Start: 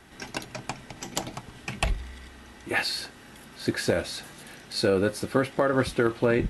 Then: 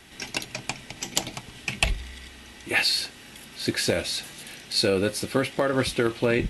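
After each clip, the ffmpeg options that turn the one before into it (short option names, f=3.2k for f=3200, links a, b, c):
-af "highshelf=f=1.9k:t=q:w=1.5:g=6"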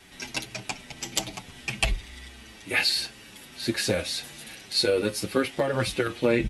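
-filter_complex "[0:a]asplit=2[a][b];[b]adelay=7.5,afreqshift=-1.5[c];[a][c]amix=inputs=2:normalize=1,volume=1.5dB"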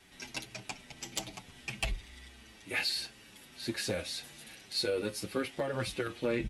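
-af "asoftclip=type=tanh:threshold=-12.5dB,volume=-8dB"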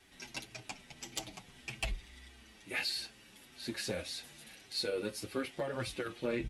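-af "flanger=delay=2.5:depth=3.3:regen=-61:speed=1.7:shape=sinusoidal,volume=1dB"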